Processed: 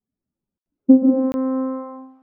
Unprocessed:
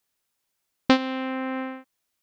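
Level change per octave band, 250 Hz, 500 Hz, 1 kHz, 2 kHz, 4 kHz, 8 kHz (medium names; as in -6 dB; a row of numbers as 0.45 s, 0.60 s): +11.0 dB, +6.5 dB, -4.0 dB, under -20 dB, under -25 dB, no reading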